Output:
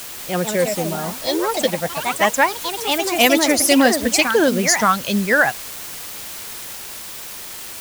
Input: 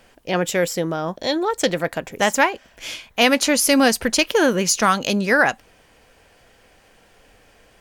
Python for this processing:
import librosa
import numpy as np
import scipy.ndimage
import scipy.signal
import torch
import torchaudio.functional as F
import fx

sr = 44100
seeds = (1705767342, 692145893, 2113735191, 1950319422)

y = fx.bin_expand(x, sr, power=1.5)
y = scipy.signal.sosfilt(scipy.signal.butter(4, 41.0, 'highpass', fs=sr, output='sos'), y)
y = fx.quant_dither(y, sr, seeds[0], bits=6, dither='triangular')
y = fx.echo_pitch(y, sr, ms=193, semitones=3, count=3, db_per_echo=-6.0)
y = y * 10.0 ** (3.0 / 20.0)